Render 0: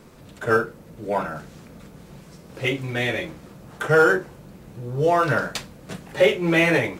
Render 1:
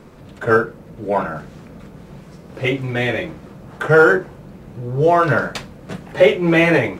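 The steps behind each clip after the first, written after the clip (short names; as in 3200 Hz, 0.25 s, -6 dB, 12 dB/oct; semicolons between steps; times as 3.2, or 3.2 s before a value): high shelf 3700 Hz -10 dB; gain +5.5 dB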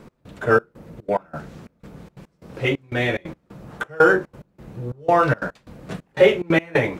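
step gate "x..xxxx..xxx." 180 bpm -24 dB; gain -2 dB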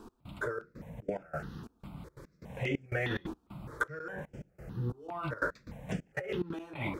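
negative-ratio compressor -24 dBFS, ratio -1; step phaser 4.9 Hz 560–4000 Hz; gain -7.5 dB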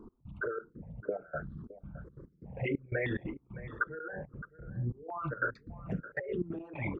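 formant sharpening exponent 2; echo 0.616 s -16.5 dB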